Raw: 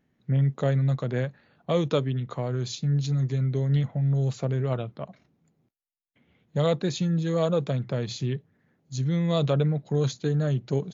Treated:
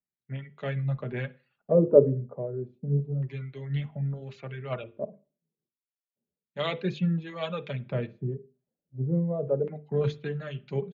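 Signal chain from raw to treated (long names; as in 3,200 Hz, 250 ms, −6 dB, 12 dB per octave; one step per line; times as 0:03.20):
reverb reduction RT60 0.64 s
mains-hum notches 50/100/150/200/250/300/350/400/450/500 Hz
comb filter 5 ms, depth 32%
in parallel at +0.5 dB: speech leveller within 4 dB 0.5 s
on the sum: two-band tremolo in antiphase 1 Hz, depth 50%, crossover 1,000 Hz
auto-filter low-pass square 0.31 Hz 500–2,500 Hz
flanger 0.43 Hz, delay 1.3 ms, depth 6 ms, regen −58%
on a send at −18 dB: convolution reverb, pre-delay 47 ms
on the sum: multiband upward and downward expander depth 70%
level −4 dB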